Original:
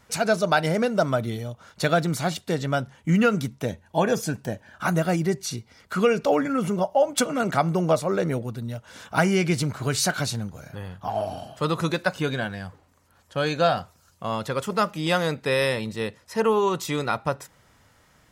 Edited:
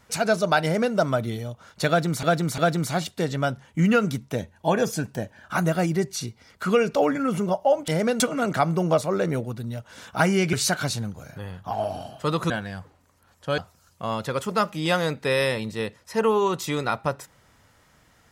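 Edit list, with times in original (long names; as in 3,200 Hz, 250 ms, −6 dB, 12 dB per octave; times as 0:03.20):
0:00.63–0:00.95: duplicate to 0:07.18
0:01.88–0:02.23: repeat, 3 plays
0:09.51–0:09.90: remove
0:11.87–0:12.38: remove
0:13.46–0:13.79: remove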